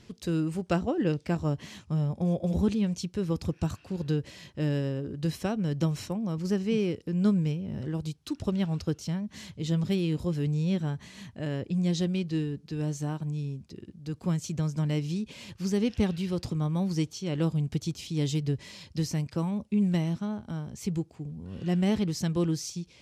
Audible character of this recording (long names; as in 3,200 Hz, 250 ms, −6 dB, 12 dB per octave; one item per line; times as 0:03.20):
background noise floor −57 dBFS
spectral slope −8.5 dB per octave